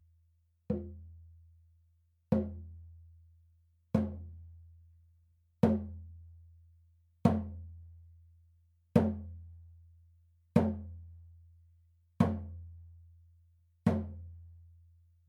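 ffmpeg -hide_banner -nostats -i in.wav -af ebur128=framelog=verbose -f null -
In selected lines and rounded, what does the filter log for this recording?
Integrated loudness:
  I:         -33.9 LUFS
  Threshold: -48.2 LUFS
Loudness range:
  LRA:         5.1 LU
  Threshold: -58.0 LUFS
  LRA low:   -41.5 LUFS
  LRA high:  -36.4 LUFS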